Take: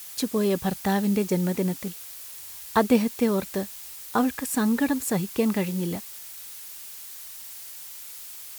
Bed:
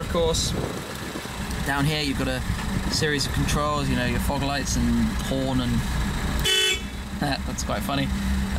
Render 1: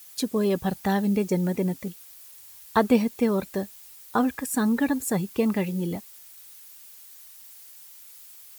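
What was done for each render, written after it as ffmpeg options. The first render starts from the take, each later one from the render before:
-af "afftdn=nr=9:nf=-41"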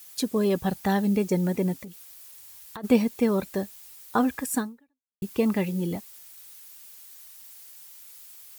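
-filter_complex "[0:a]asplit=3[a][b][c];[a]afade=t=out:st=1.77:d=0.02[d];[b]acompressor=threshold=-36dB:ratio=10:attack=3.2:release=140:knee=1:detection=peak,afade=t=in:st=1.77:d=0.02,afade=t=out:st=2.83:d=0.02[e];[c]afade=t=in:st=2.83:d=0.02[f];[d][e][f]amix=inputs=3:normalize=0,asplit=2[g][h];[g]atrim=end=5.22,asetpts=PTS-STARTPTS,afade=t=out:st=4.58:d=0.64:c=exp[i];[h]atrim=start=5.22,asetpts=PTS-STARTPTS,afade=t=in:d=0.004:c=hsin[j];[i][j]concat=n=2:v=0:a=1"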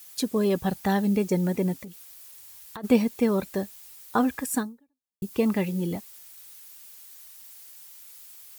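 -filter_complex "[0:a]asettb=1/sr,asplit=3[a][b][c];[a]atrim=end=4.634[d];[b]atrim=start=4.63:end=5.33,asetpts=PTS-STARTPTS,afade=t=in:d=0.004:c=qsin,afade=t=out:st=0.696:d=0.004:c=qsin,equalizer=f=1.9k:w=0.78:g=-8.5[e];[c]atrim=start=5.326[f];[d][e]acrossfade=d=0.004:c1=hsin:c2=qsin[g];[g][f]acrossfade=d=0.004:c1=qsin:c2=hsin"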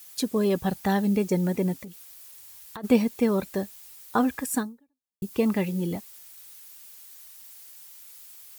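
-af anull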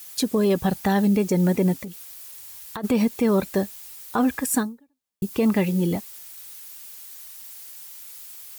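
-af "acontrast=51,alimiter=limit=-13dB:level=0:latency=1:release=71"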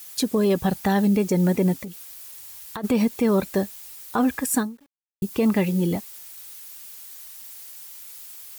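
-af "acrusher=bits=9:mix=0:aa=0.000001"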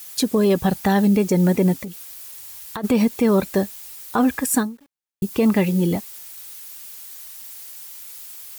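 -af "volume=3dB"

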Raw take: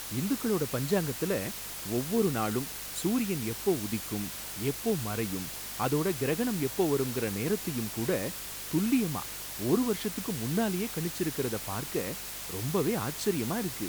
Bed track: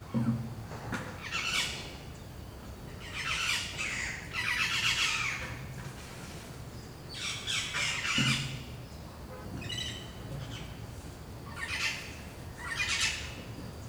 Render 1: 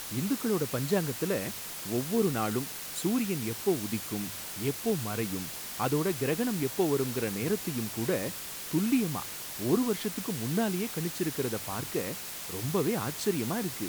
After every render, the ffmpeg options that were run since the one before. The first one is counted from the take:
-af "bandreject=f=50:t=h:w=4,bandreject=f=100:t=h:w=4"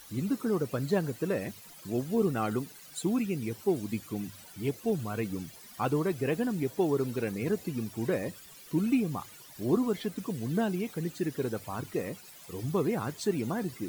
-af "afftdn=nr=15:nf=-40"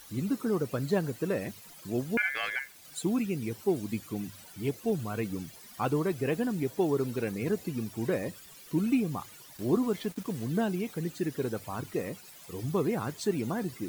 -filter_complex "[0:a]asettb=1/sr,asplit=3[a][b][c];[a]atrim=end=2.174[d];[b]atrim=start=2.17:end=2.85,asetpts=PTS-STARTPTS,afade=t=in:d=0.004:c=qsin,afade=t=out:st=0.676:d=0.004:c=qsin,aeval=exprs='val(0)*sin(2*PI*1900*n/s)':c=same[e];[c]atrim=start=2.846[f];[d][e]acrossfade=d=0.004:c1=hsin:c2=qsin[g];[g][f]acrossfade=d=0.004:c1=qsin:c2=hsin,asettb=1/sr,asplit=3[h][i][j];[h]atrim=end=9.574[k];[i]atrim=start=9.57:end=10.45,asetpts=PTS-STARTPTS,afade=t=in:d=0.004:c=qsin,afade=t=out:st=0.876:d=0.004:c=qsin,aeval=exprs='val(0)*gte(abs(val(0)),0.00596)':c=same[l];[j]atrim=start=10.446[m];[k][l]acrossfade=d=0.004:c1=hsin:c2=qsin[n];[n][m]acrossfade=d=0.004:c1=qsin:c2=hsin"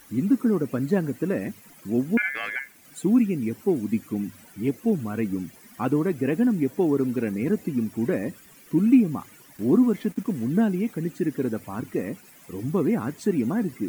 -af "equalizer=f=250:t=o:w=1:g=11,equalizer=f=2k:t=o:w=1:g=5,equalizer=f=4k:t=o:w=1:g=-7"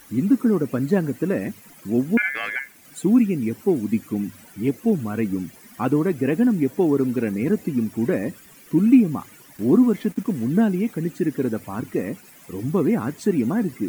-af "volume=3dB"

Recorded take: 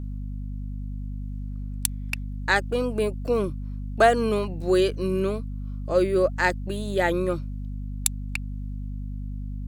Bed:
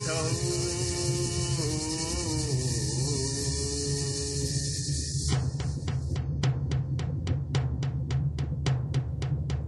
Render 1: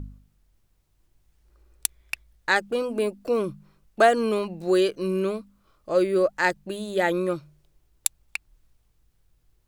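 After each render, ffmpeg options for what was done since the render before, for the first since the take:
-af "bandreject=f=50:t=h:w=4,bandreject=f=100:t=h:w=4,bandreject=f=150:t=h:w=4,bandreject=f=200:t=h:w=4,bandreject=f=250:t=h:w=4"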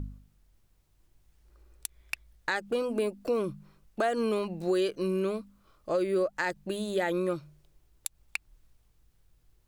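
-af "alimiter=limit=-14.5dB:level=0:latency=1:release=121,acompressor=threshold=-28dB:ratio=2"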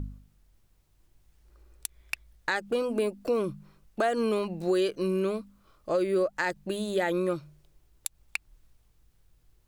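-af "volume=1.5dB"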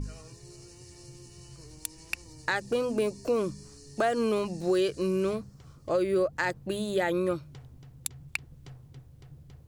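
-filter_complex "[1:a]volume=-20.5dB[a];[0:a][a]amix=inputs=2:normalize=0"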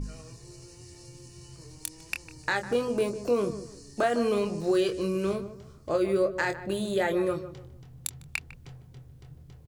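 -filter_complex "[0:a]asplit=2[a][b];[b]adelay=25,volume=-7dB[c];[a][c]amix=inputs=2:normalize=0,asplit=2[d][e];[e]adelay=152,lowpass=f=1.3k:p=1,volume=-11.5dB,asplit=2[f][g];[g]adelay=152,lowpass=f=1.3k:p=1,volume=0.31,asplit=2[h][i];[i]adelay=152,lowpass=f=1.3k:p=1,volume=0.31[j];[d][f][h][j]amix=inputs=4:normalize=0"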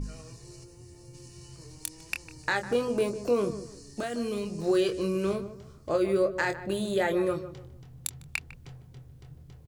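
-filter_complex "[0:a]asplit=3[a][b][c];[a]afade=t=out:st=0.63:d=0.02[d];[b]equalizer=f=3.9k:w=0.36:g=-8.5,afade=t=in:st=0.63:d=0.02,afade=t=out:st=1.13:d=0.02[e];[c]afade=t=in:st=1.13:d=0.02[f];[d][e][f]amix=inputs=3:normalize=0,asettb=1/sr,asplit=3[g][h][i];[g]atrim=end=4.004[j];[h]atrim=start=4:end=4.59,asetpts=PTS-STARTPTS,afade=t=in:d=0.004:c=qsin,afade=t=out:st=0.586:d=0.004:c=qsin,equalizer=f=890:w=0.46:g=-11[k];[i]atrim=start=4.586[l];[j][k]acrossfade=d=0.004:c1=hsin:c2=qsin[m];[m][l]acrossfade=d=0.004:c1=qsin:c2=hsin"

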